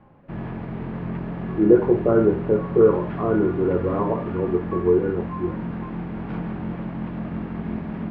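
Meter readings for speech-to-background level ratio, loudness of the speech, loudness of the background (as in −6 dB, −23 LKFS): 9.5 dB, −21.0 LKFS, −30.5 LKFS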